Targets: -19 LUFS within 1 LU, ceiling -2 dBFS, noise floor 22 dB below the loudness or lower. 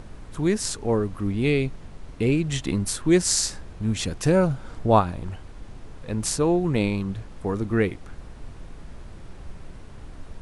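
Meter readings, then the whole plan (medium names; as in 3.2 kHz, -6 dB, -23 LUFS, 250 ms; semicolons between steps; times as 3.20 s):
noise floor -42 dBFS; noise floor target -46 dBFS; loudness -24.0 LUFS; peak level -4.5 dBFS; loudness target -19.0 LUFS
-> noise print and reduce 6 dB; trim +5 dB; peak limiter -2 dBFS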